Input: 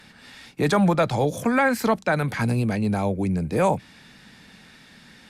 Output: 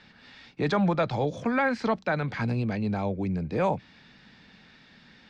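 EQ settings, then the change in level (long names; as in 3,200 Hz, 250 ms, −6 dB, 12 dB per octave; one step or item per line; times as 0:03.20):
low-pass filter 5,200 Hz 24 dB per octave
−5.0 dB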